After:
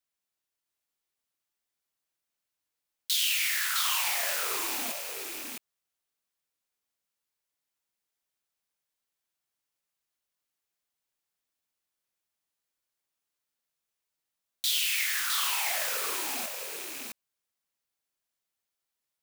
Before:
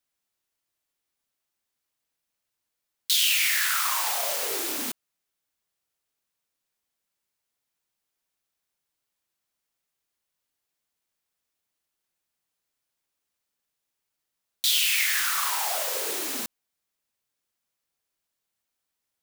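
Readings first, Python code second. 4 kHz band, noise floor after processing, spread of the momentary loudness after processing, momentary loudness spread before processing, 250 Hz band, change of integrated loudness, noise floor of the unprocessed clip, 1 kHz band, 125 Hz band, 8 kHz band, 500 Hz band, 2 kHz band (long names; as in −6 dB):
−3.5 dB, below −85 dBFS, 13 LU, 12 LU, −5.5 dB, −4.5 dB, −83 dBFS, −4.0 dB, can't be measured, −3.5 dB, −5.0 dB, −3.5 dB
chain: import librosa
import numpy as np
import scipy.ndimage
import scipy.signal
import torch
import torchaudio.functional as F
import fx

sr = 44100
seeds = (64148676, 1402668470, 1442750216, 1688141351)

p1 = fx.rattle_buzz(x, sr, strikes_db=-54.0, level_db=-24.0)
p2 = fx.low_shelf(p1, sr, hz=380.0, db=-2.5)
p3 = p2 + fx.echo_single(p2, sr, ms=660, db=-4.0, dry=0)
y = p3 * librosa.db_to_amplitude(-5.0)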